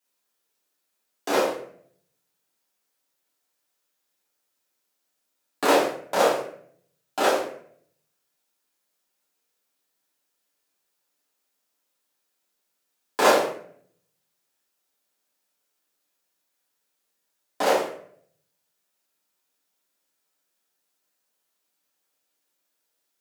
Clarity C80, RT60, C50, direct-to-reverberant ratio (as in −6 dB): 9.0 dB, 0.60 s, 4.5 dB, −8.5 dB